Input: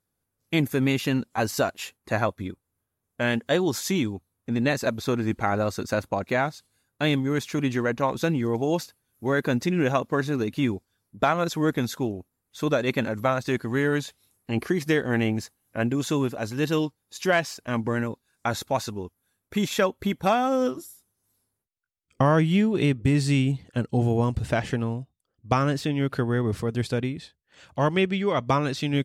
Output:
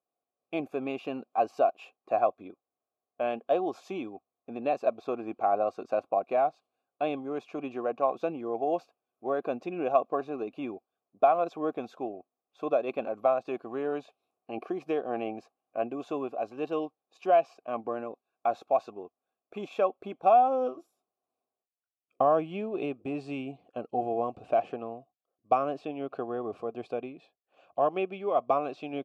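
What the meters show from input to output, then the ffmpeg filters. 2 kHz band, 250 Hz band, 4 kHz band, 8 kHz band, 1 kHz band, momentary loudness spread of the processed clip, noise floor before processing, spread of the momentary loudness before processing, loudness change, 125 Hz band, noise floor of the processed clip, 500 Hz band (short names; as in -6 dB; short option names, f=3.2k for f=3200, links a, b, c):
-15.0 dB, -11.5 dB, under -15 dB, under -25 dB, +0.5 dB, 14 LU, -81 dBFS, 8 LU, -5.0 dB, -23.5 dB, under -85 dBFS, -2.0 dB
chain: -filter_complex "[0:a]asplit=3[a][b][c];[a]bandpass=f=730:t=q:w=8,volume=0dB[d];[b]bandpass=f=1.09k:t=q:w=8,volume=-6dB[e];[c]bandpass=f=2.44k:t=q:w=8,volume=-9dB[f];[d][e][f]amix=inputs=3:normalize=0,equalizer=f=350:w=0.58:g=12"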